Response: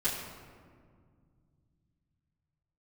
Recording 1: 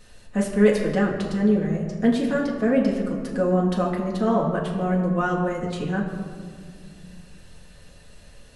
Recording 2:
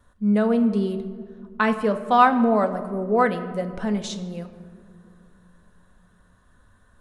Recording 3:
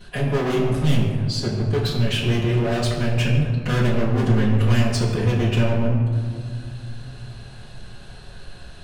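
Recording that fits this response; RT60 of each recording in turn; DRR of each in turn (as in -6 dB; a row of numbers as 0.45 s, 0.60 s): 3; 2.0 s, no single decay rate, 2.0 s; -3.0 dB, 6.5 dB, -12.0 dB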